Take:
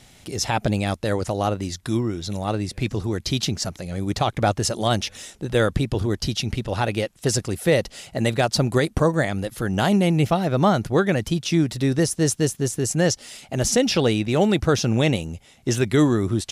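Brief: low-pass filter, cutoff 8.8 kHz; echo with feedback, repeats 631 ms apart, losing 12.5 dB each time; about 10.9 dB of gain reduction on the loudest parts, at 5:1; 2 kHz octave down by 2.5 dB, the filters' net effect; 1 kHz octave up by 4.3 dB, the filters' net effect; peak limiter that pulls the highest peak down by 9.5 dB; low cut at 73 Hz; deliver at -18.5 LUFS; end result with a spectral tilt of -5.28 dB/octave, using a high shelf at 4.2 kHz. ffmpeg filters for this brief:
-af "highpass=73,lowpass=8800,equalizer=f=1000:t=o:g=7.5,equalizer=f=2000:t=o:g=-5.5,highshelf=f=4200:g=-3.5,acompressor=threshold=0.0562:ratio=5,alimiter=limit=0.0891:level=0:latency=1,aecho=1:1:631|1262|1893:0.237|0.0569|0.0137,volume=4.73"

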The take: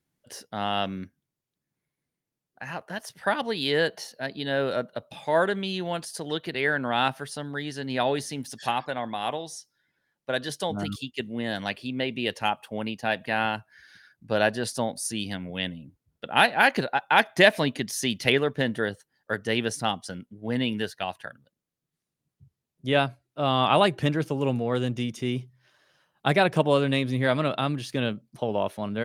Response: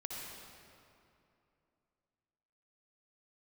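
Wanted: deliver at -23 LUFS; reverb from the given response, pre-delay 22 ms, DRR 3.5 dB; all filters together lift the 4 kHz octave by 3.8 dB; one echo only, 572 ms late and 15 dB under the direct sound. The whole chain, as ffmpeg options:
-filter_complex "[0:a]equalizer=f=4000:t=o:g=5,aecho=1:1:572:0.178,asplit=2[s0][s1];[1:a]atrim=start_sample=2205,adelay=22[s2];[s1][s2]afir=irnorm=-1:irlink=0,volume=0.668[s3];[s0][s3]amix=inputs=2:normalize=0,volume=1.12"

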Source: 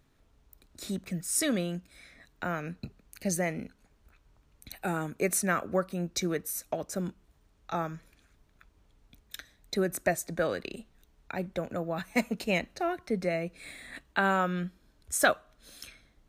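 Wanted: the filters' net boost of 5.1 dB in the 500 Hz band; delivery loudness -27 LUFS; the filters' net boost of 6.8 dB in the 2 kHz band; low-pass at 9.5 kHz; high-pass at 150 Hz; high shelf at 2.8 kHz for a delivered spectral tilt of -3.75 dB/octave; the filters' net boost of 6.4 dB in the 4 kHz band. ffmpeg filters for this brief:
-af "highpass=150,lowpass=9500,equalizer=f=500:t=o:g=6,equalizer=f=2000:t=o:g=8.5,highshelf=f=2800:g=-5,equalizer=f=4000:t=o:g=9,volume=1.12"

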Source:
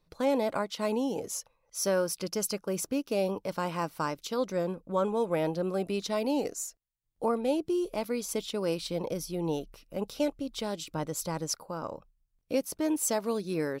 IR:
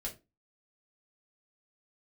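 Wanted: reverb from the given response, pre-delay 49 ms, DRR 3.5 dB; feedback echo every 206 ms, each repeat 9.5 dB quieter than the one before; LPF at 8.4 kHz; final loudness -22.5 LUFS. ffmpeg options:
-filter_complex "[0:a]lowpass=8400,aecho=1:1:206|412|618|824:0.335|0.111|0.0365|0.012,asplit=2[s0][s1];[1:a]atrim=start_sample=2205,adelay=49[s2];[s1][s2]afir=irnorm=-1:irlink=0,volume=0.708[s3];[s0][s3]amix=inputs=2:normalize=0,volume=2.24"

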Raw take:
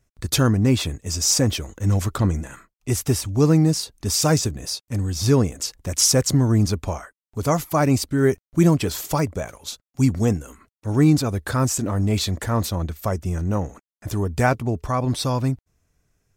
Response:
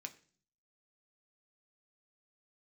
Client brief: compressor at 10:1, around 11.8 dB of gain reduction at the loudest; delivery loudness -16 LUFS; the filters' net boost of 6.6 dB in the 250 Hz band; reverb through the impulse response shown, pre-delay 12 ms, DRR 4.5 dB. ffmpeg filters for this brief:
-filter_complex "[0:a]equalizer=f=250:t=o:g=8.5,acompressor=threshold=0.112:ratio=10,asplit=2[s0][s1];[1:a]atrim=start_sample=2205,adelay=12[s2];[s1][s2]afir=irnorm=-1:irlink=0,volume=0.944[s3];[s0][s3]amix=inputs=2:normalize=0,volume=2.37"

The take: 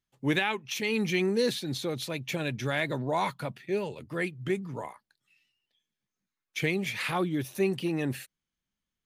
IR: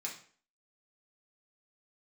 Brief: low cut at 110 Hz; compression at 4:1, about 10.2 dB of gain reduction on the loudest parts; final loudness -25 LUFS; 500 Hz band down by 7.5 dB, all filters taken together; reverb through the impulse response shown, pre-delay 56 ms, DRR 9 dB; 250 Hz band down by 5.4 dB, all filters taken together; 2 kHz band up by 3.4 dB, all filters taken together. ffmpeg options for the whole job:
-filter_complex "[0:a]highpass=110,equalizer=f=250:t=o:g=-4.5,equalizer=f=500:t=o:g=-8.5,equalizer=f=2000:t=o:g=4.5,acompressor=threshold=0.0178:ratio=4,asplit=2[s0][s1];[1:a]atrim=start_sample=2205,adelay=56[s2];[s1][s2]afir=irnorm=-1:irlink=0,volume=0.355[s3];[s0][s3]amix=inputs=2:normalize=0,volume=4.22"

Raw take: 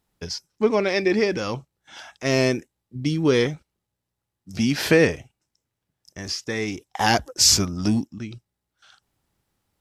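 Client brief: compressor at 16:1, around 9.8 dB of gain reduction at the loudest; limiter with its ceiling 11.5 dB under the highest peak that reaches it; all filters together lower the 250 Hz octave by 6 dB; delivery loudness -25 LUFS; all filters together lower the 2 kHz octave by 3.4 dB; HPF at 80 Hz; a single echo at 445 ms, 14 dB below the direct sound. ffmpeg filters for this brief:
-af "highpass=80,equalizer=f=250:t=o:g=-8,equalizer=f=2000:t=o:g=-4,acompressor=threshold=0.0708:ratio=16,alimiter=limit=0.0794:level=0:latency=1,aecho=1:1:445:0.2,volume=2.82"

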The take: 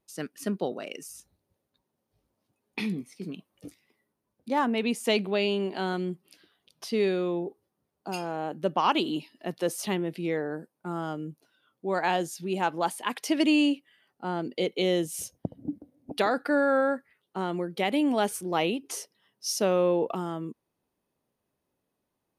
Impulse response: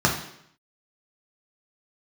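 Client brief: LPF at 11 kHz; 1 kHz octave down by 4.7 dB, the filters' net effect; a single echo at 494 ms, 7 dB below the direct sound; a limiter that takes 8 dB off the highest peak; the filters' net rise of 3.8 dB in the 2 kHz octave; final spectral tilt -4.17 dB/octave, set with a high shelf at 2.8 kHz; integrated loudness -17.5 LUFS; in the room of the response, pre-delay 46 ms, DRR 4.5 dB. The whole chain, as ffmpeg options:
-filter_complex "[0:a]lowpass=11000,equalizer=f=1000:t=o:g=-8.5,equalizer=f=2000:t=o:g=4,highshelf=f=2800:g=8,alimiter=limit=0.133:level=0:latency=1,aecho=1:1:494:0.447,asplit=2[s0][s1];[1:a]atrim=start_sample=2205,adelay=46[s2];[s1][s2]afir=irnorm=-1:irlink=0,volume=0.0841[s3];[s0][s3]amix=inputs=2:normalize=0,volume=3.35"

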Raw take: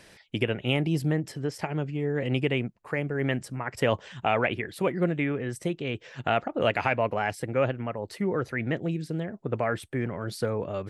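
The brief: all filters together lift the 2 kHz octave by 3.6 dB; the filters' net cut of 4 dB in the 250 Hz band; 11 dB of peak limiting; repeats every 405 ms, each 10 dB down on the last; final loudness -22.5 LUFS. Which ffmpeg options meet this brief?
-af "equalizer=f=250:t=o:g=-6,equalizer=f=2000:t=o:g=4.5,alimiter=limit=0.106:level=0:latency=1,aecho=1:1:405|810|1215|1620:0.316|0.101|0.0324|0.0104,volume=2.99"

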